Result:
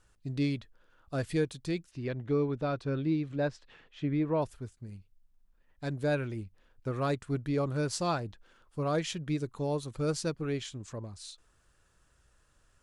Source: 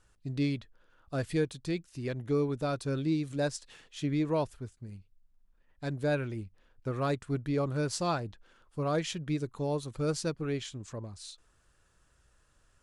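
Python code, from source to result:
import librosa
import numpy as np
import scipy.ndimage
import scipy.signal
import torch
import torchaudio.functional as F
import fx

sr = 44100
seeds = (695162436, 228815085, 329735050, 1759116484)

y = fx.lowpass(x, sr, hz=fx.line((1.9, 4100.0), (4.41, 2200.0)), slope=12, at=(1.9, 4.41), fade=0.02)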